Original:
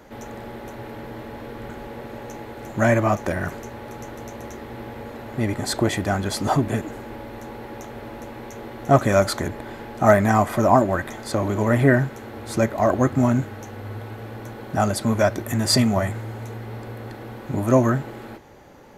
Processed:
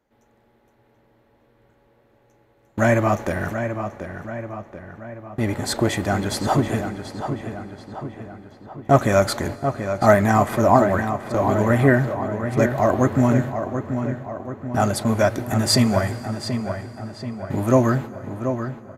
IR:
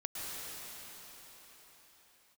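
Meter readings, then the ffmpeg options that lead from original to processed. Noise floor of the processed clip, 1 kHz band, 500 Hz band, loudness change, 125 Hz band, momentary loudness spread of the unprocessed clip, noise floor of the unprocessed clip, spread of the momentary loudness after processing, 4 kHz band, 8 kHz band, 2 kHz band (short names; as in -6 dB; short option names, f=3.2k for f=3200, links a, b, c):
-60 dBFS, +1.5 dB, +1.5 dB, 0.0 dB, +1.5 dB, 19 LU, -38 dBFS, 17 LU, +0.5 dB, +0.5 dB, +1.0 dB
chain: -filter_complex "[0:a]agate=range=-25dB:threshold=-29dB:ratio=16:detection=peak,asplit=2[a][b];[b]adelay=733,lowpass=f=3.2k:p=1,volume=-8dB,asplit=2[c][d];[d]adelay=733,lowpass=f=3.2k:p=1,volume=0.55,asplit=2[e][f];[f]adelay=733,lowpass=f=3.2k:p=1,volume=0.55,asplit=2[g][h];[h]adelay=733,lowpass=f=3.2k:p=1,volume=0.55,asplit=2[i][j];[j]adelay=733,lowpass=f=3.2k:p=1,volume=0.55,asplit=2[k][l];[l]adelay=733,lowpass=f=3.2k:p=1,volume=0.55,asplit=2[m][n];[n]adelay=733,lowpass=f=3.2k:p=1,volume=0.55[o];[a][c][e][g][i][k][m][o]amix=inputs=8:normalize=0,asplit=2[p][q];[1:a]atrim=start_sample=2205[r];[q][r]afir=irnorm=-1:irlink=0,volume=-20.5dB[s];[p][s]amix=inputs=2:normalize=0"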